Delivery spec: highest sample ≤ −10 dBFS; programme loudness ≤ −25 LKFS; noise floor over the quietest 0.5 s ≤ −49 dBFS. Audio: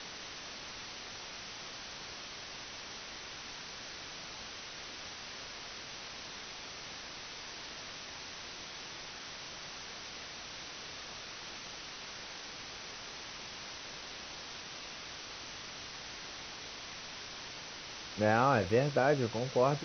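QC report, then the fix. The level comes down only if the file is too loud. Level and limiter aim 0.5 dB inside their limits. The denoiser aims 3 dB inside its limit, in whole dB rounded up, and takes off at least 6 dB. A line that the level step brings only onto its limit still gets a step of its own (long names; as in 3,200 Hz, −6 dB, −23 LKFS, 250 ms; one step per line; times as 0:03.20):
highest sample −14.5 dBFS: in spec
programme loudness −39.0 LKFS: in spec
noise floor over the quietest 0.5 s −46 dBFS: out of spec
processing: broadband denoise 6 dB, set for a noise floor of −46 dBFS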